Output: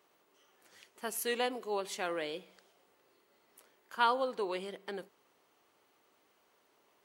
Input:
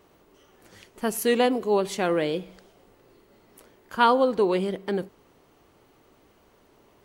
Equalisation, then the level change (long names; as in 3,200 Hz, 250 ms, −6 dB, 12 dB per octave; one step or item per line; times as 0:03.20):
high-pass filter 880 Hz 6 dB per octave
−6.5 dB